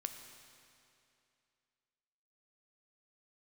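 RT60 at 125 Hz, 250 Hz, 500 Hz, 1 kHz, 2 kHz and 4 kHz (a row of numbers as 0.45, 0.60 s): 2.6, 2.6, 2.6, 2.6, 2.6, 2.4 s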